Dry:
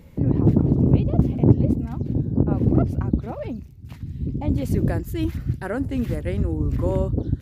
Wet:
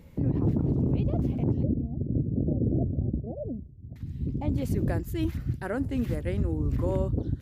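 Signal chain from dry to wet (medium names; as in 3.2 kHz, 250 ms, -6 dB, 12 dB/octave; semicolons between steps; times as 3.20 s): peak limiter -13 dBFS, peak gain reduction 11.5 dB; 1.63–3.96 s: steep low-pass 680 Hz 72 dB/octave; trim -4 dB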